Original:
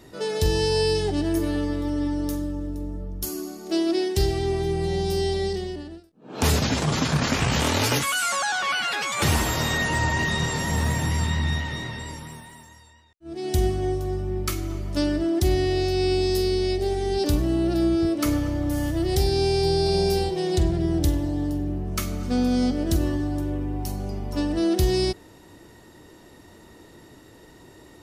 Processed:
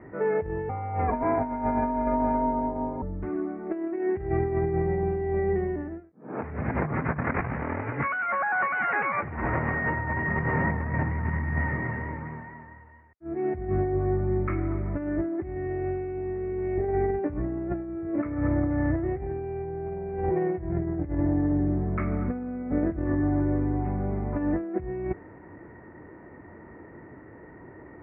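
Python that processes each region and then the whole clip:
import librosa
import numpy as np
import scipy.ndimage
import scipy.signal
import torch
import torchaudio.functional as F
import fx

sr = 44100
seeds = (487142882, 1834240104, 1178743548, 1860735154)

y = fx.chain(x, sr, fx.highpass(hz=100.0, slope=6),
    fx.small_body(hz=(590.0, 2000.0, 4000.0), ring_ms=40, db=17),
    fx.ring_mod(carrier_hz=340.0), at=(0.69, 3.02))
y = scipy.signal.sosfilt(scipy.signal.butter(2, 59.0, 'highpass', fs=sr, output='sos'), y)
y = fx.over_compress(y, sr, threshold_db=-26.0, ratio=-0.5)
y = scipy.signal.sosfilt(scipy.signal.butter(12, 2200.0, 'lowpass', fs=sr, output='sos'), y)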